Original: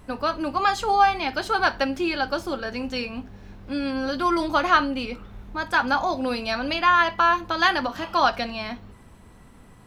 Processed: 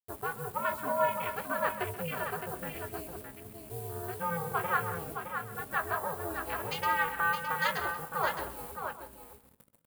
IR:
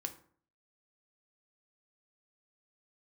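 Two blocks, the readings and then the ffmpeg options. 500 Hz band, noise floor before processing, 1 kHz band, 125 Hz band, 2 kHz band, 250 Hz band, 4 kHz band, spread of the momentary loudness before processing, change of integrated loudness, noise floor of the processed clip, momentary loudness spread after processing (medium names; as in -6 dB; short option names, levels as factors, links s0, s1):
-8.0 dB, -49 dBFS, -11.0 dB, -1.0 dB, -9.0 dB, -16.5 dB, -15.0 dB, 13 LU, -10.0 dB, -60 dBFS, 12 LU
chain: -filter_complex "[0:a]afwtdn=0.0316,equalizer=f=150:w=1.8:g=-14.5,aeval=exprs='val(0)*sin(2*PI*170*n/s)':c=same,acrusher=bits=7:mix=0:aa=0.000001,aexciter=amount=6:drive=5.1:freq=8300,asplit=2[s0][s1];[s1]adelay=19,volume=0.237[s2];[s0][s2]amix=inputs=2:normalize=0,aecho=1:1:181|615:0.178|0.447,asplit=2[s3][s4];[1:a]atrim=start_sample=2205,adelay=130[s5];[s4][s5]afir=irnorm=-1:irlink=0,volume=0.237[s6];[s3][s6]amix=inputs=2:normalize=0,volume=0.398"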